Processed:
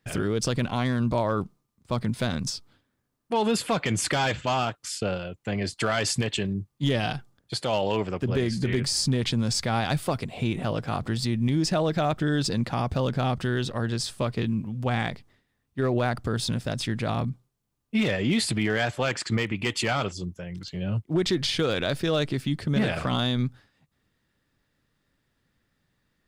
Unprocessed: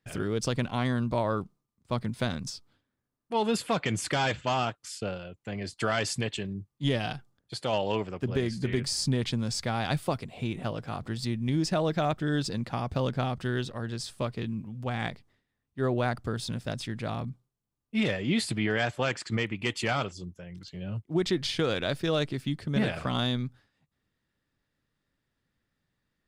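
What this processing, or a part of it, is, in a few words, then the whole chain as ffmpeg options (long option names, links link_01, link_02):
clipper into limiter: -af "asoftclip=type=hard:threshold=-19dB,alimiter=limit=-23.5dB:level=0:latency=1:release=52,volume=7dB"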